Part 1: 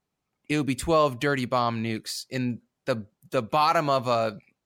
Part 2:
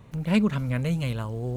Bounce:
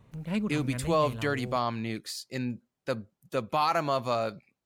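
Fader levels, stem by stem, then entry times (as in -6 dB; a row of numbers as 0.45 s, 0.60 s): -4.5 dB, -8.5 dB; 0.00 s, 0.00 s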